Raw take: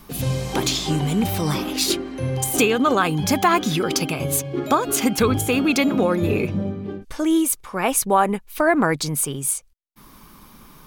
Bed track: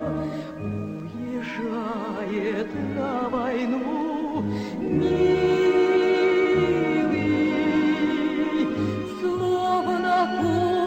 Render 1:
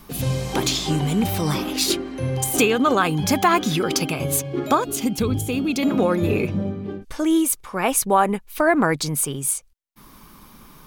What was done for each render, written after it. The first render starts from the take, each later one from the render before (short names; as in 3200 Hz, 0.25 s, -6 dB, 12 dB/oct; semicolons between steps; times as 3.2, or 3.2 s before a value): 4.84–5.83 EQ curve 170 Hz 0 dB, 1600 Hz -13 dB, 3200 Hz -5 dB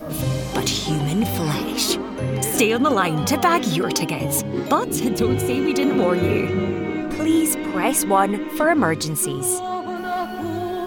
add bed track -4 dB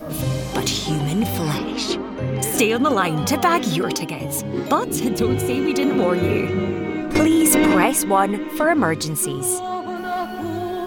1.58–2.39 air absorption 100 m; 3.95–4.42 gain -3.5 dB; 7.15–7.86 fast leveller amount 100%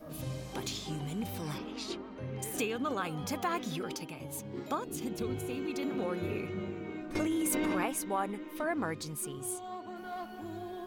gain -16 dB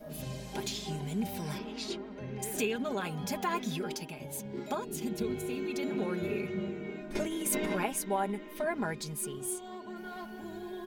notch 1200 Hz, Q 5.9; comb 4.9 ms, depth 63%